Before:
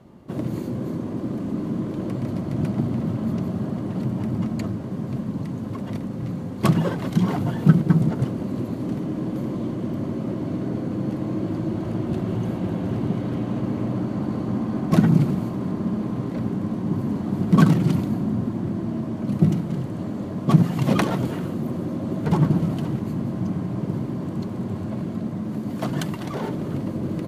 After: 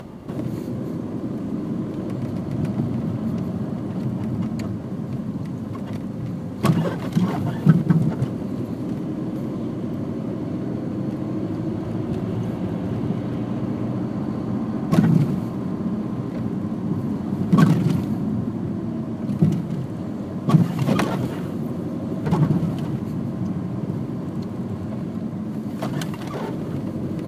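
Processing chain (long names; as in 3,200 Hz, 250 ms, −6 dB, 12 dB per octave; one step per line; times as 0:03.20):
upward compression, threshold −26 dBFS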